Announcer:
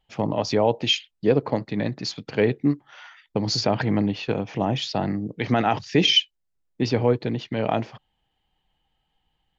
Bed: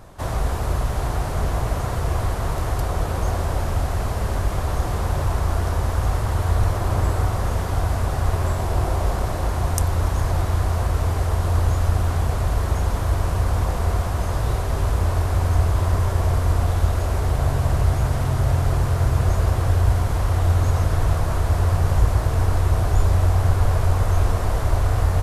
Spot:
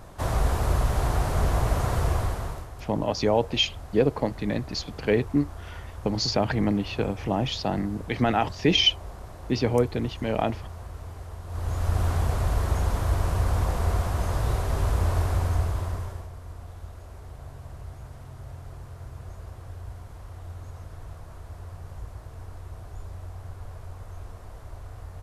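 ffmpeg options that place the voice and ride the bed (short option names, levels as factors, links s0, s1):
-filter_complex "[0:a]adelay=2700,volume=0.794[s0];[1:a]volume=4.73,afade=t=out:st=2.02:d=0.66:silence=0.141254,afade=t=in:st=11.47:d=0.57:silence=0.188365,afade=t=out:st=15.23:d=1.06:silence=0.125893[s1];[s0][s1]amix=inputs=2:normalize=0"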